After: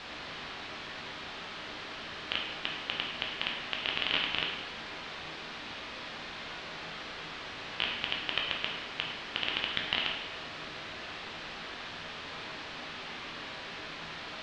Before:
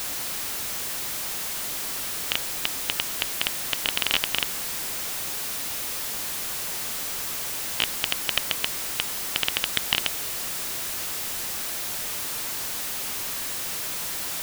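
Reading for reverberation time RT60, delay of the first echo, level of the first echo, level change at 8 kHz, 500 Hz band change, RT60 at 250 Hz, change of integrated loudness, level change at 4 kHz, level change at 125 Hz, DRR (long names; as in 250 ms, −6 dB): 1.0 s, no echo audible, no echo audible, −28.5 dB, −3.5 dB, 0.95 s, −9.0 dB, −5.5 dB, −5.0 dB, −1.5 dB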